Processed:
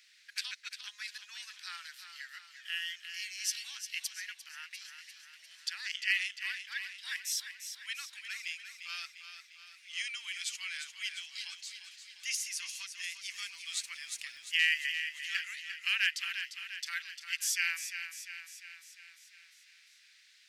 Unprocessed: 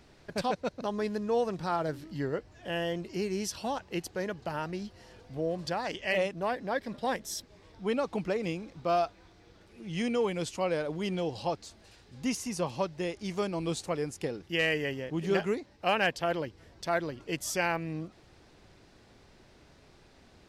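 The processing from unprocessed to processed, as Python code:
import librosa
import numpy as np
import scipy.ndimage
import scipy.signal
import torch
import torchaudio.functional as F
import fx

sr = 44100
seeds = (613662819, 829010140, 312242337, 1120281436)

y = scipy.signal.sosfilt(scipy.signal.butter(6, 1800.0, 'highpass', fs=sr, output='sos'), x)
y = fx.dmg_crackle(y, sr, seeds[0], per_s=200.0, level_db=-57.0, at=(13.34, 14.97), fade=0.02)
y = fx.echo_feedback(y, sr, ms=349, feedback_pct=57, wet_db=-9)
y = fx.band_widen(y, sr, depth_pct=70, at=(3.77, 4.71))
y = y * 10.0 ** (3.5 / 20.0)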